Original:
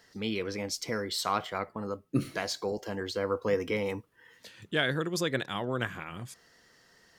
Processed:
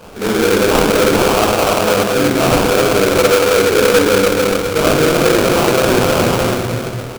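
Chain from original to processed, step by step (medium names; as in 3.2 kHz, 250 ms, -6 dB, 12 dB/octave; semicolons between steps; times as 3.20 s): peaking EQ 500 Hz +10 dB 2.2 oct; feedback delay 291 ms, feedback 29%, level -11.5 dB; reverse; compression, threshold -32 dBFS, peak gain reduction 17.5 dB; reverse; reverberation RT60 2.4 s, pre-delay 4 ms, DRR -12 dB; in parallel at +1.5 dB: peak limiter -14 dBFS, peak gain reduction 9 dB; on the sum: treble shelf 3 kHz +11 dB; sample-rate reducer 1.9 kHz, jitter 20%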